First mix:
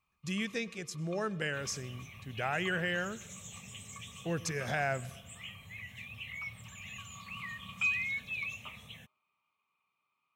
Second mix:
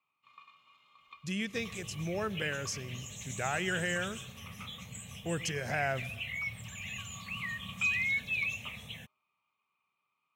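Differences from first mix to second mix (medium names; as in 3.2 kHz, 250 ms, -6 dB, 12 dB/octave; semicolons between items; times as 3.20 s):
speech: entry +1.00 s; second sound +5.0 dB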